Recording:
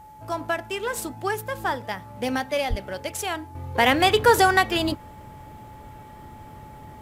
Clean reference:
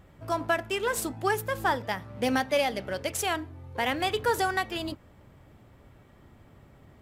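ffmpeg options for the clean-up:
-filter_complex "[0:a]bandreject=f=860:w=30,asplit=3[a][b][c];[a]afade=t=out:st=2.69:d=0.02[d];[b]highpass=f=140:w=0.5412,highpass=f=140:w=1.3066,afade=t=in:st=2.69:d=0.02,afade=t=out:st=2.81:d=0.02[e];[c]afade=t=in:st=2.81:d=0.02[f];[d][e][f]amix=inputs=3:normalize=0,agate=range=-21dB:threshold=-36dB,asetnsamples=n=441:p=0,asendcmd='3.55 volume volume -9.5dB',volume=0dB"

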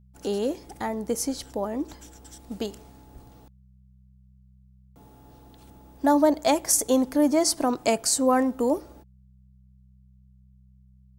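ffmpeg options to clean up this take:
-af "bandreject=f=63.9:t=h:w=4,bandreject=f=127.8:t=h:w=4,bandreject=f=191.7:t=h:w=4"

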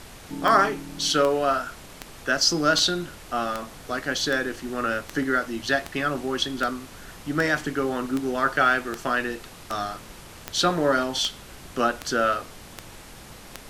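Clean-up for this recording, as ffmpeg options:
-af "adeclick=t=4,afftdn=nr=26:nf=-44"

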